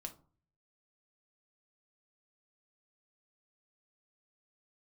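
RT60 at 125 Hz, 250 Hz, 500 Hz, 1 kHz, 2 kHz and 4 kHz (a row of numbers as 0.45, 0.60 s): 0.80, 0.55, 0.40, 0.45, 0.25, 0.20 s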